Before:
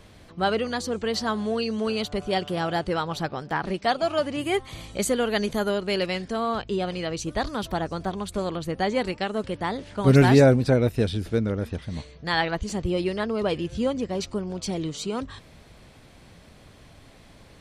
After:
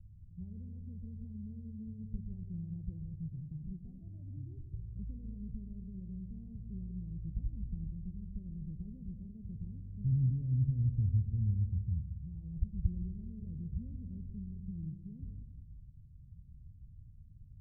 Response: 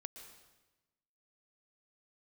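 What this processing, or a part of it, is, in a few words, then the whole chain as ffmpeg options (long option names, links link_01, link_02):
club heard from the street: -filter_complex "[0:a]alimiter=limit=-16dB:level=0:latency=1:release=31,lowpass=frequency=130:width=0.5412,lowpass=frequency=130:width=1.3066[link_01];[1:a]atrim=start_sample=2205[link_02];[link_01][link_02]afir=irnorm=-1:irlink=0,volume=5.5dB"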